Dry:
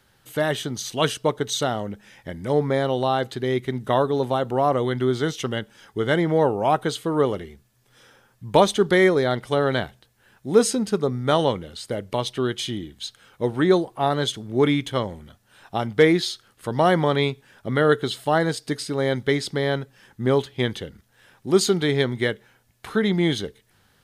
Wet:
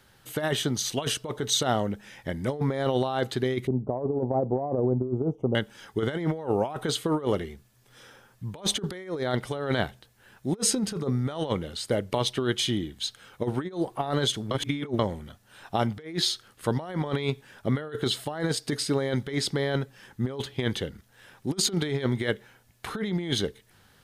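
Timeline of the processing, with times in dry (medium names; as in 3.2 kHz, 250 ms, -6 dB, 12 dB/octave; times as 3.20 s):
3.67–5.55 s: inverse Chebyshev low-pass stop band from 1.6 kHz
14.51–14.99 s: reverse
whole clip: compressor with a negative ratio -24 dBFS, ratio -0.5; trim -2 dB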